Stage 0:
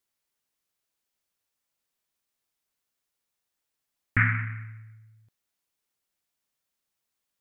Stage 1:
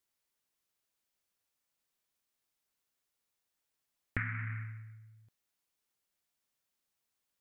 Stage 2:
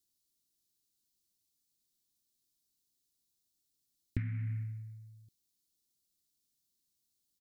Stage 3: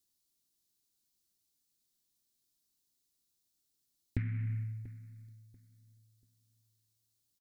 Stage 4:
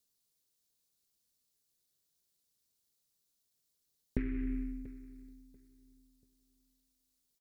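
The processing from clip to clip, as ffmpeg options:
-af "acompressor=threshold=-30dB:ratio=12,volume=-2dB"
-af "firequalizer=gain_entry='entry(340,0);entry(500,-15);entry(1300,-25);entry(4000,1)':delay=0.05:min_phase=1,volume=3.5dB"
-filter_complex "[0:a]aeval=exprs='0.119*(cos(1*acos(clip(val(0)/0.119,-1,1)))-cos(1*PI/2))+0.0075*(cos(4*acos(clip(val(0)/0.119,-1,1)))-cos(4*PI/2))':c=same,asplit=2[a][b];[b]adelay=688,lowpass=f=1.4k:p=1,volume=-17dB,asplit=2[c][d];[d]adelay=688,lowpass=f=1.4k:p=1,volume=0.27,asplit=2[e][f];[f]adelay=688,lowpass=f=1.4k:p=1,volume=0.27[g];[a][c][e][g]amix=inputs=4:normalize=0,volume=1dB"
-af "aeval=exprs='val(0)*sin(2*PI*150*n/s)':c=same,volume=3dB"

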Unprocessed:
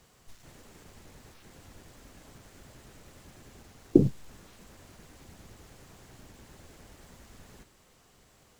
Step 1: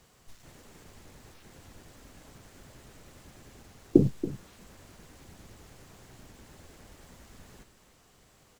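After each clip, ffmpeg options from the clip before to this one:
-af "aecho=1:1:280:0.2"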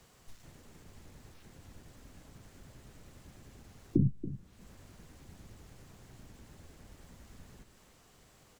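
-filter_complex "[0:a]acrossover=split=250[a][b];[b]acompressor=threshold=-59dB:ratio=4[c];[a][c]amix=inputs=2:normalize=0"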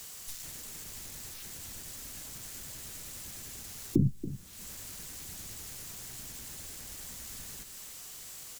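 -af "crystalizer=i=9.5:c=0,volume=1dB"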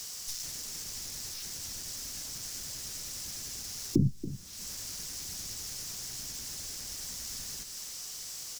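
-af "equalizer=f=5.4k:w=1.8:g=11.5"

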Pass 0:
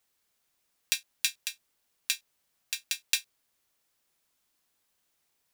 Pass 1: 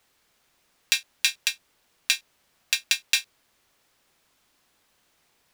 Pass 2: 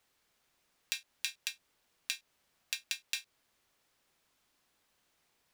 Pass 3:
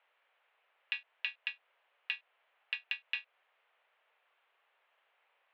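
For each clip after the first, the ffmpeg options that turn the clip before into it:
-af "highshelf=f=6.3k:g=-10.5,alimiter=level_in=14.5dB:limit=-1dB:release=50:level=0:latency=1,volume=-1dB"
-af "acompressor=threshold=-26dB:ratio=3,volume=-8dB"
-af "highpass=f=420:t=q:w=0.5412,highpass=f=420:t=q:w=1.307,lowpass=f=2.9k:t=q:w=0.5176,lowpass=f=2.9k:t=q:w=0.7071,lowpass=f=2.9k:t=q:w=1.932,afreqshift=89,volume=5dB"

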